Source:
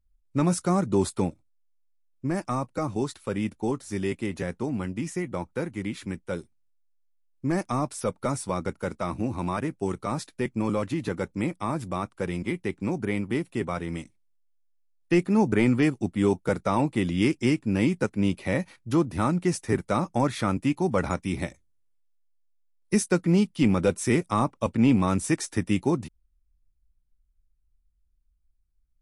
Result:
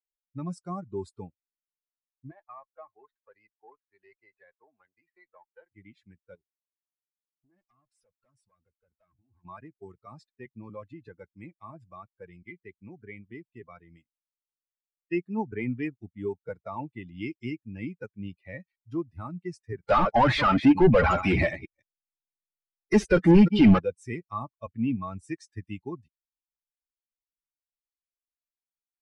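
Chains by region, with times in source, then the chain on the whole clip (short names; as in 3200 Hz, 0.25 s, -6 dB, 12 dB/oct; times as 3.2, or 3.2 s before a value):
2.31–5.72 three-band isolator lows -21 dB, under 450 Hz, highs -16 dB, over 2700 Hz + running maximum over 5 samples
6.35–9.45 compressor, threshold -31 dBFS + tube stage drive 37 dB, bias 0.6
19.83–23.79 reverse delay 0.166 s, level -14 dB + overdrive pedal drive 34 dB, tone 7200 Hz, clips at -9.5 dBFS + tilt -2 dB/oct
whole clip: per-bin expansion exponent 2; LPF 3500 Hz 12 dB/oct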